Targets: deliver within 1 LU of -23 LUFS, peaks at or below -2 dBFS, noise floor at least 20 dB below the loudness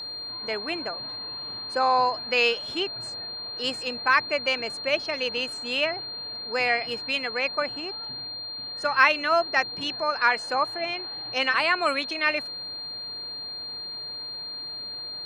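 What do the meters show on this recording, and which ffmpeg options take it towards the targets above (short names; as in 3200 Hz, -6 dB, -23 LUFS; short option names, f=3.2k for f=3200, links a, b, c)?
steady tone 4200 Hz; tone level -33 dBFS; loudness -26.0 LUFS; peak -6.0 dBFS; loudness target -23.0 LUFS
-> -af "bandreject=f=4.2k:w=30"
-af "volume=3dB"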